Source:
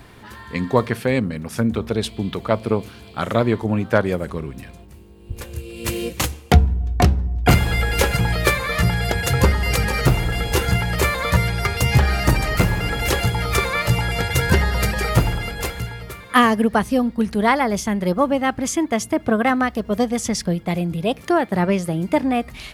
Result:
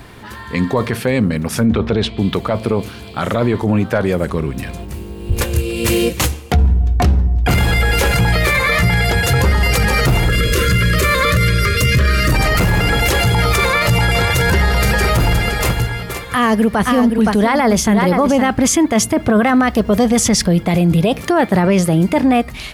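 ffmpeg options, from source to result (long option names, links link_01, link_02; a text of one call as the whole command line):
ffmpeg -i in.wav -filter_complex "[0:a]asettb=1/sr,asplit=3[link_01][link_02][link_03];[link_01]atrim=end=1.664[link_04];[link_02]atrim=start=1.66:end=2.18,asetpts=PTS-STARTPTS,afade=type=in:duration=0.004:curve=qsin,afade=type=out:start_time=0.516:duration=0.004:curve=qsin,lowpass=3700[link_05];[link_03]atrim=start=2.176[link_06];[link_04][link_05]acrossfade=duration=0.004:curve1=hsin:curve2=qsin[link_07];[link_07][link_06]acrossfade=duration=0.004:curve1=qsin:curve2=hsin,asettb=1/sr,asplit=3[link_08][link_09][link_10];[link_08]atrim=end=8.344[link_11];[link_09]atrim=start=8.34:end=9.07,asetpts=PTS-STARTPTS,afade=type=in:duration=0.004:curve=qsin,afade=type=out:start_time=0.726:duration=0.004:curve=qsin,equalizer=frequency=2100:width_type=o:width=0.2:gain=7.5[link_12];[link_10]atrim=start=9.066[link_13];[link_11][link_12]acrossfade=duration=0.004:curve1=hsin:curve2=qsin[link_14];[link_14][link_13]acrossfade=duration=0.004:curve1=qsin:curve2=hsin,asettb=1/sr,asplit=3[link_15][link_16][link_17];[link_15]atrim=end=10.294[link_18];[link_16]atrim=start=10.29:end=12.32,asetpts=PTS-STARTPTS,afade=type=in:duration=0.004:curve=qsin,afade=type=out:start_time=2.026:duration=0.004:curve=qsin,asuperstop=centerf=820:order=20:qfactor=2.2[link_19];[link_17]atrim=start=12.316[link_20];[link_18][link_19]acrossfade=duration=0.004:curve1=hsin:curve2=qsin[link_21];[link_21][link_20]acrossfade=duration=0.004:curve1=qsin:curve2=hsin,asettb=1/sr,asplit=3[link_22][link_23][link_24];[link_22]atrim=end=13.634[link_25];[link_23]atrim=start=13.63:end=18.52,asetpts=PTS-STARTPTS,afade=type=in:duration=0.004:curve=qsin,afade=type=out:start_time=4.886:duration=0.004:curve=qsin,aecho=1:1:517:0.299,atrim=end_sample=215649[link_26];[link_24]atrim=start=18.516[link_27];[link_25][link_26]acrossfade=duration=0.004:curve1=hsin:curve2=qsin[link_28];[link_28][link_27]acrossfade=duration=0.004:curve1=qsin:curve2=hsin,dynaudnorm=framelen=110:gausssize=11:maxgain=11.5dB,alimiter=limit=-12.5dB:level=0:latency=1:release=10,volume=6.5dB" out.wav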